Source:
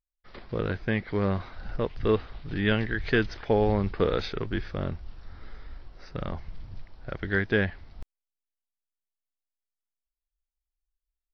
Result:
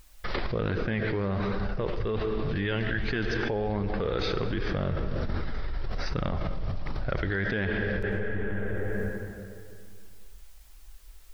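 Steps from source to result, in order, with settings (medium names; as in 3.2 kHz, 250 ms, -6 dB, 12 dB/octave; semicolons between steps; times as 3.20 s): on a send at -10 dB: reverberation RT60 2.3 s, pre-delay 55 ms; on the sum: peak limiter -18 dBFS, peak gain reduction 7 dB; flange 1.3 Hz, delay 0.7 ms, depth 1.7 ms, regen -69%; level flattener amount 100%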